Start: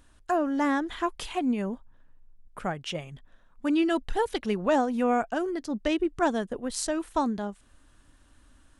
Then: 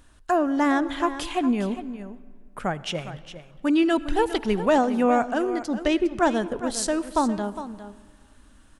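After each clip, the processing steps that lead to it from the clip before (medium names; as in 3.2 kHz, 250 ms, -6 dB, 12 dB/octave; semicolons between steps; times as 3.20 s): delay 408 ms -12.5 dB; on a send at -17.5 dB: reverberation RT60 1.8 s, pre-delay 65 ms; on the sum: trim +4 dB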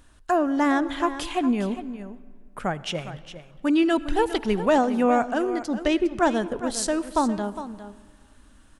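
no audible change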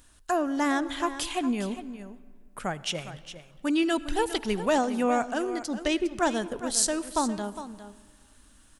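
treble shelf 3.5 kHz +11.5 dB; trim -5 dB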